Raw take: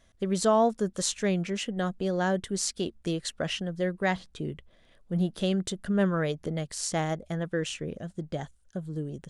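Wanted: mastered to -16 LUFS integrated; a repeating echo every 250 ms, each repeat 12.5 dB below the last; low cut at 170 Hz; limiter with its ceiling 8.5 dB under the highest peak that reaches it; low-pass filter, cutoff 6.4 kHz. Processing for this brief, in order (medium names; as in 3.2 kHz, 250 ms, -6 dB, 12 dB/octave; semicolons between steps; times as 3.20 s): high-pass 170 Hz; low-pass 6.4 kHz; peak limiter -20 dBFS; feedback delay 250 ms, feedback 24%, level -12.5 dB; trim +16.5 dB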